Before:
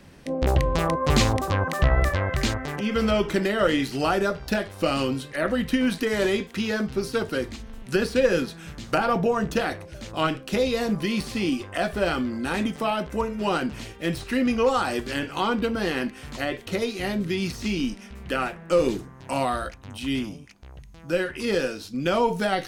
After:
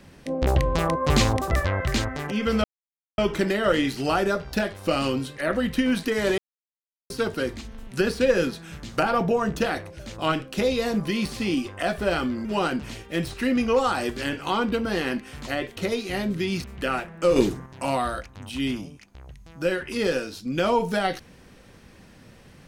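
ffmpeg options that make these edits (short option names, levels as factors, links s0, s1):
-filter_complex "[0:a]asplit=9[s0][s1][s2][s3][s4][s5][s6][s7][s8];[s0]atrim=end=1.512[s9];[s1]atrim=start=1.998:end=3.13,asetpts=PTS-STARTPTS,afade=t=out:st=1.128:d=0.004:c=hsin,apad=pad_dur=0.54[s10];[s2]atrim=start=3.13:end=6.33,asetpts=PTS-STARTPTS,afade=t=in:d=0.004:c=hsin,afade=t=out:st=3.196:d=0.004:c=hsin[s11];[s3]atrim=start=6.33:end=7.05,asetpts=PTS-STARTPTS,volume=0[s12];[s4]atrim=start=7.05:end=12.402,asetpts=PTS-STARTPTS,afade=t=in:d=0.004:c=hsin[s13];[s5]atrim=start=13.348:end=17.542[s14];[s6]atrim=start=18.118:end=18.842[s15];[s7]atrim=start=18.838:end=19.142,asetpts=PTS-STARTPTS,volume=1.88[s16];[s8]atrim=start=19.138[s17];[s10][s11][s12][s13]concat=n=4:v=0:a=1[s18];[s9][s18]acrossfade=d=0.004:c1=hsin:c2=hsin[s19];[s19][s14]acrossfade=d=0.004:c1=hsin:c2=hsin[s20];[s20][s15]acrossfade=d=0.004:c1=hsin:c2=hsin[s21];[s21][s16]acrossfade=d=0.004:c1=hsin:c2=hsin[s22];[s22][s17]acrossfade=d=0.004:c1=hsin:c2=hsin"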